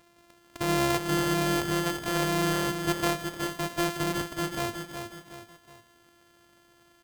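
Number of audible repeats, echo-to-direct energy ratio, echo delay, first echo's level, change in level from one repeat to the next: 3, -6.0 dB, 0.368 s, -7.0 dB, -7.5 dB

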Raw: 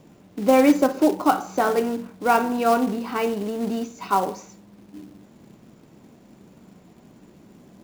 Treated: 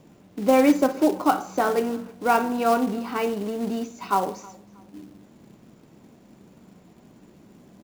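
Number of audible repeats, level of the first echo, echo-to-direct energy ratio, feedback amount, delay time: 2, -24.0 dB, -23.5 dB, 32%, 0.317 s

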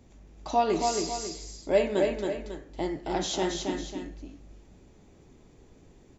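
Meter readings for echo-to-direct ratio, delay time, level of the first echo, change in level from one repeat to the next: -3.5 dB, 0.274 s, -4.0 dB, -7.5 dB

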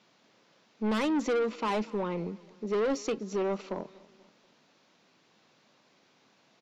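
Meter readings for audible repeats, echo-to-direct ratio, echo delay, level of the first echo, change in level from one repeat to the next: 2, -21.5 dB, 0.241 s, -22.5 dB, -6.5 dB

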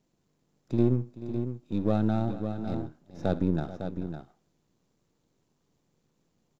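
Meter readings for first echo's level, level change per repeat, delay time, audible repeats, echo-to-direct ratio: -17.5 dB, no steady repeat, 65 ms, 3, -7.5 dB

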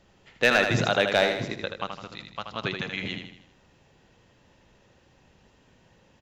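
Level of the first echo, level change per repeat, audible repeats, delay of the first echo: -6.5 dB, -6.5 dB, 5, 79 ms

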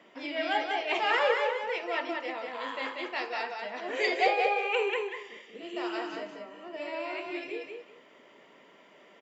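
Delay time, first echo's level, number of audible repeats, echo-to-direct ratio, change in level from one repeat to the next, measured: 0.188 s, -4.0 dB, 2, -4.0 dB, -14.0 dB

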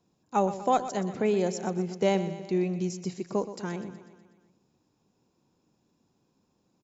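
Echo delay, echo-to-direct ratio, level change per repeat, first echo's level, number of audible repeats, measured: 0.123 s, -11.0 dB, -4.5 dB, -13.0 dB, 5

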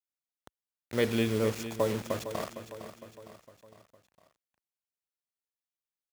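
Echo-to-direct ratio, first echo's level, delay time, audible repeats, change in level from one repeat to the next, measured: -10.0 dB, -11.5 dB, 0.458 s, 4, -6.0 dB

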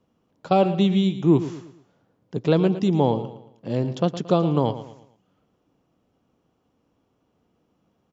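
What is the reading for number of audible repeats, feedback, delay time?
3, 39%, 0.113 s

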